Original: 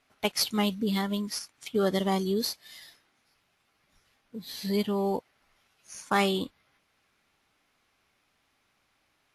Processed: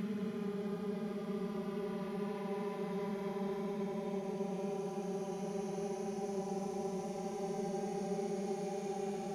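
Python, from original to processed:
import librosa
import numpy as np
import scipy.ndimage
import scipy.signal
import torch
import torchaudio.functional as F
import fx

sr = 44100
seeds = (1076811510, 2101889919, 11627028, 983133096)

y = fx.echo_filtered(x, sr, ms=900, feedback_pct=42, hz=1700.0, wet_db=-16.0)
y = fx.paulstretch(y, sr, seeds[0], factor=43.0, window_s=0.05, from_s=6.69)
y = y * librosa.db_to_amplitude(12.0)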